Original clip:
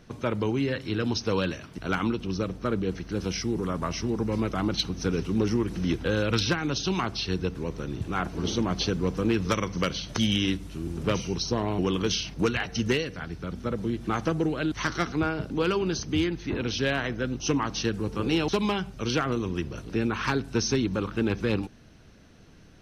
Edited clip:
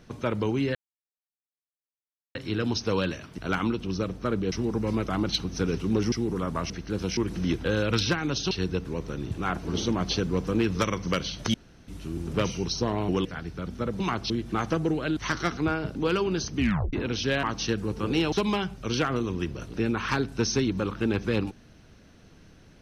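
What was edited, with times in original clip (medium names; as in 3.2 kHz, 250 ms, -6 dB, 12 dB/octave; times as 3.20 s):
0.75 s: insert silence 1.60 s
2.92–3.39 s: swap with 3.97–5.57 s
6.91–7.21 s: move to 13.85 s
10.24–10.58 s: room tone
11.95–13.10 s: delete
16.12 s: tape stop 0.36 s
16.98–17.59 s: delete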